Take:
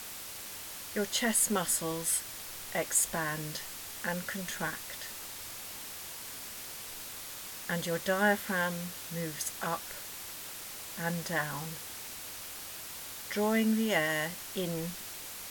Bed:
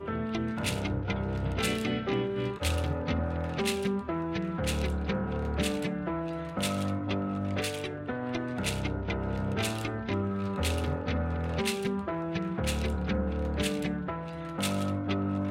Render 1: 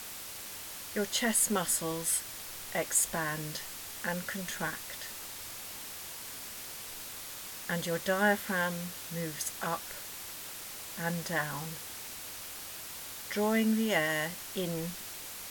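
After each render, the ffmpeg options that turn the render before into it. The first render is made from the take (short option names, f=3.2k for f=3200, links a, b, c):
-af anull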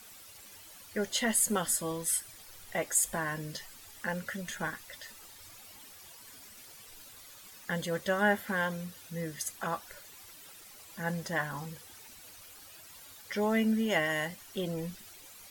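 -af "afftdn=nr=12:nf=-44"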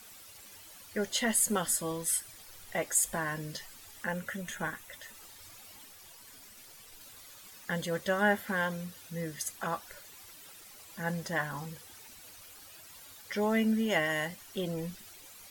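-filter_complex "[0:a]asettb=1/sr,asplit=3[a][b][c];[a]atrim=end=4.044[d];[b]atrim=start=4.04:end=5.14,asetpts=PTS-STARTPTS,afade=t=in:d=0.004:c=qsin,afade=t=out:st=1.096:d=0.004:c=qsin,equalizer=f=4.7k:w=3.3:g=-8[e];[c]atrim=start=5.136[f];[d][e]acrossfade=d=0.004:c1=hsin:c2=qsin[g];[g][f]acrossfade=d=0.004:c1=qsin:c2=hsin,asettb=1/sr,asplit=3[h][i][j];[h]atrim=end=5.854[k];[i]atrim=start=5.85:end=7.01,asetpts=PTS-STARTPTS,afade=t=in:d=0.004:c=qsin,afade=t=out:st=1.156:d=0.004:c=qsin,aeval=exprs='if(lt(val(0),0),0.708*val(0),val(0))':c=same[l];[j]atrim=start=7.006[m];[k][l]acrossfade=d=0.004:c1=hsin:c2=qsin[n];[n][m]acrossfade=d=0.004:c1=qsin:c2=hsin"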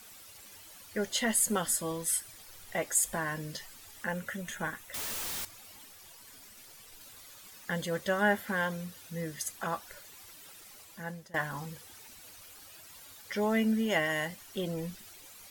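-filter_complex "[0:a]asettb=1/sr,asplit=3[a][b][c];[a]atrim=end=4.944[d];[b]atrim=start=4.94:end=5.45,asetpts=PTS-STARTPTS,afade=t=in:d=0.004:c=qsin,afade=t=out:st=0.506:d=0.004:c=qsin,aeval=exprs='0.0211*sin(PI/2*8.91*val(0)/0.0211)':c=same[e];[c]atrim=start=5.446[f];[d][e]acrossfade=d=0.004:c1=hsin:c2=qsin[g];[g][f]acrossfade=d=0.004:c1=qsin:c2=hsin,asplit=2[h][i];[h]atrim=end=11.34,asetpts=PTS-STARTPTS,afade=t=out:st=10.76:d=0.58:silence=0.0794328[j];[i]atrim=start=11.34,asetpts=PTS-STARTPTS,afade=t=in:d=0.004:c=hsin:silence=0.0794328[k];[j][k]concat=n=2:v=0:a=1"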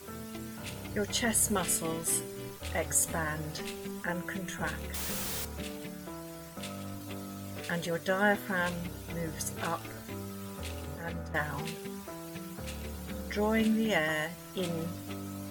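-filter_complex "[1:a]volume=-10.5dB[a];[0:a][a]amix=inputs=2:normalize=0"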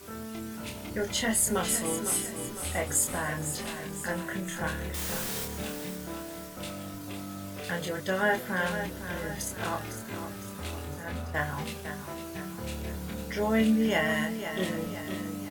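-filter_complex "[0:a]asplit=2[a][b];[b]adelay=27,volume=-4dB[c];[a][c]amix=inputs=2:normalize=0,aecho=1:1:506|1012|1518|2024|2530|3036:0.335|0.171|0.0871|0.0444|0.0227|0.0116"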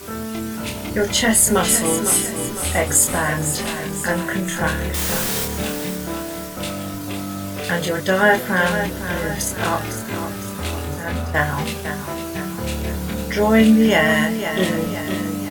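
-af "volume=11.5dB,alimiter=limit=-3dB:level=0:latency=1"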